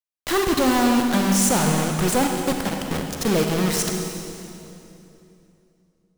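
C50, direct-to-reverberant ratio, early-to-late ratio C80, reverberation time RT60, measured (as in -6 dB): 3.0 dB, 2.5 dB, 4.0 dB, 2.9 s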